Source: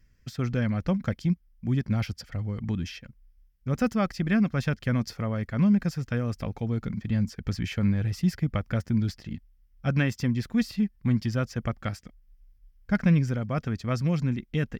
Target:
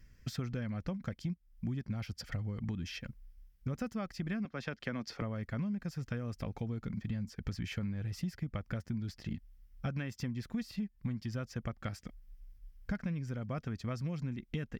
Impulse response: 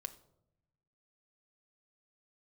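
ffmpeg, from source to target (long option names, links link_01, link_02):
-filter_complex "[0:a]asettb=1/sr,asplit=3[link_01][link_02][link_03];[link_01]atrim=end=4.454[link_04];[link_02]atrim=start=4.45:end=5.22,asetpts=PTS-STARTPTS,afade=type=in:duration=0.004:curve=qsin,afade=type=out:start_time=0.766:duration=0.004:curve=qsin,acrossover=split=220 6100:gain=0.224 1 0.224[link_05][link_06][link_07];[link_05][link_06][link_07]amix=inputs=3:normalize=0[link_08];[link_03]atrim=start=5.216[link_09];[link_04][link_08]acrossfade=duration=0.004:curve1=hsin:curve2=qsin[link_10];[link_10][link_09]acrossfade=duration=0.004:curve1=qsin:curve2=hsin,acompressor=threshold=-37dB:ratio=10,volume=3dB"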